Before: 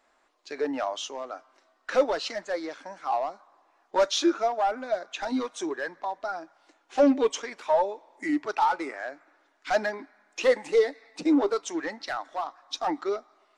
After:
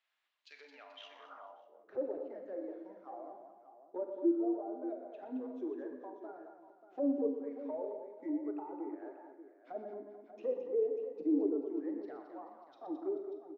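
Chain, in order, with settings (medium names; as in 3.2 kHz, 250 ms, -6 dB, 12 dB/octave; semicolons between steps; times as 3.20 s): low-pass that closes with the level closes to 730 Hz, closed at -23.5 dBFS; 0.99–1.96 s: ring modulator 32 Hz -> 120 Hz; on a send: multi-tap echo 121/218/434/588 ms -9.5/-8/-15.5/-12 dB; on the sum: Schroeder reverb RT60 0.75 s, combs from 32 ms, DRR 7 dB; band-pass sweep 3 kHz -> 360 Hz, 0.97–1.91 s; trim -7 dB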